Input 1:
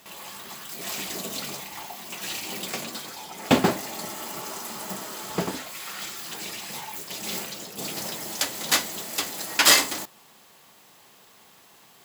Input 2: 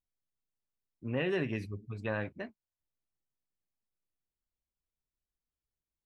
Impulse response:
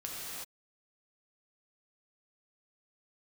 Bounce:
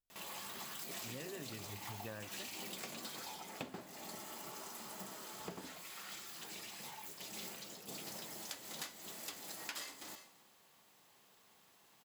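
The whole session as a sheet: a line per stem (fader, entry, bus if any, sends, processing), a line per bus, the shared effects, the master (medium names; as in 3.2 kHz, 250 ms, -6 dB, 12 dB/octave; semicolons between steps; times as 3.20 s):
3.27 s -5.5 dB -> 3.56 s -13.5 dB, 0.10 s, send -22.5 dB, none
-3.5 dB, 0.00 s, no send, none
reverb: on, pre-delay 3 ms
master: compression 20:1, threshold -42 dBFS, peak gain reduction 18.5 dB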